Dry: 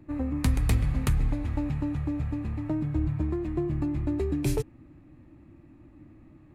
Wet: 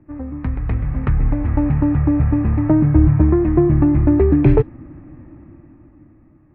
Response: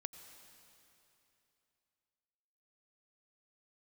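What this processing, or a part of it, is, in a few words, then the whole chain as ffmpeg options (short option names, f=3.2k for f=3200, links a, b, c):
action camera in a waterproof case: -af "lowpass=f=2k:w=0.5412,lowpass=f=2k:w=1.3066,dynaudnorm=f=200:g=13:m=16.5dB,volume=1dB" -ar 22050 -c:a aac -b:a 96k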